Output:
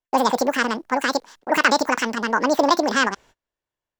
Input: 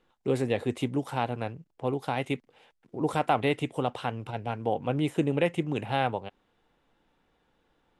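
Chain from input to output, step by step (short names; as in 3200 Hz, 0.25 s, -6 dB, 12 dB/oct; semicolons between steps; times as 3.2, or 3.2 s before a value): speed mistake 7.5 ips tape played at 15 ips; gate -56 dBFS, range -32 dB; transient shaper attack 0 dB, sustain +4 dB; gain +8.5 dB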